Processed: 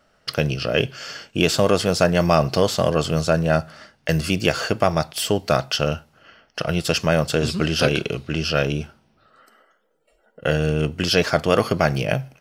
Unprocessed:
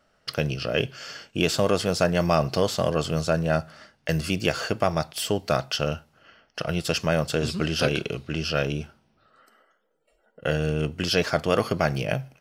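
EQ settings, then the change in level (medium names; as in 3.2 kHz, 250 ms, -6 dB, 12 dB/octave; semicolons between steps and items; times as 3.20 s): flat; +4.5 dB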